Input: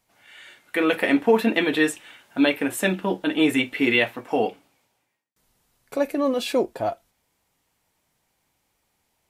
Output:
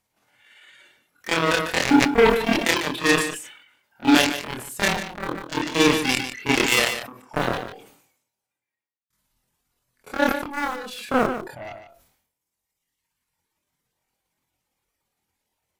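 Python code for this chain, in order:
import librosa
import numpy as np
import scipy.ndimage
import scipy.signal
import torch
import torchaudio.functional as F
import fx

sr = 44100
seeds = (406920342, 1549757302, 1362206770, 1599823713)

p1 = fx.notch(x, sr, hz=680.0, q=19.0)
p2 = fx.dereverb_blind(p1, sr, rt60_s=1.1)
p3 = fx.dynamic_eq(p2, sr, hz=910.0, q=2.0, threshold_db=-36.0, ratio=4.0, max_db=-3)
p4 = fx.cheby_harmonics(p3, sr, harmonics=(5, 7), levels_db=(-28, -10), full_scale_db=-8.0)
p5 = np.where(np.abs(p4) >= 10.0 ** (-26.0 / 20.0), p4, 0.0)
p6 = p4 + (p5 * librosa.db_to_amplitude(-3.0))
p7 = fx.stretch_grains(p6, sr, factor=1.7, grain_ms=115.0)
p8 = p7 + fx.echo_single(p7, sr, ms=148, db=-12.5, dry=0)
p9 = fx.sustainer(p8, sr, db_per_s=75.0)
y = p9 * librosa.db_to_amplitude(-3.0)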